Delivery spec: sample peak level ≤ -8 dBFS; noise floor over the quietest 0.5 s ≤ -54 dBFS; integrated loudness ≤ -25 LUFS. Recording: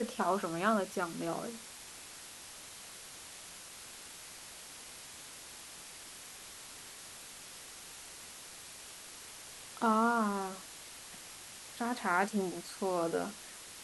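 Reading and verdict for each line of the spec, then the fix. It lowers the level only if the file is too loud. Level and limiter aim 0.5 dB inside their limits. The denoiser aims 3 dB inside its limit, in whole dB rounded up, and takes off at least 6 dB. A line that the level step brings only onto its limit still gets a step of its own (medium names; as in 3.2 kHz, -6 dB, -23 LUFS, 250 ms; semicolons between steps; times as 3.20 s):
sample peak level -16.0 dBFS: pass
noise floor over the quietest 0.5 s -50 dBFS: fail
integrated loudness -38.5 LUFS: pass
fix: noise reduction 7 dB, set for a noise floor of -50 dBFS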